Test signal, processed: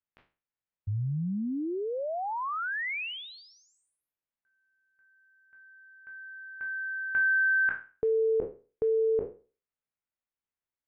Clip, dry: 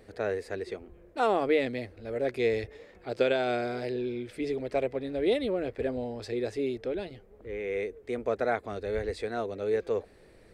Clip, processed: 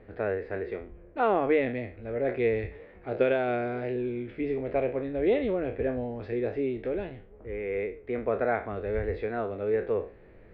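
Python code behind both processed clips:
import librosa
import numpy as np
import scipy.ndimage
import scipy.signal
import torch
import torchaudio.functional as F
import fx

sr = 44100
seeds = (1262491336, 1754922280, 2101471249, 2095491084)

y = fx.spec_trails(x, sr, decay_s=0.35)
y = scipy.signal.sosfilt(scipy.signal.butter(4, 2600.0, 'lowpass', fs=sr, output='sos'), y)
y = fx.low_shelf(y, sr, hz=200.0, db=4.5)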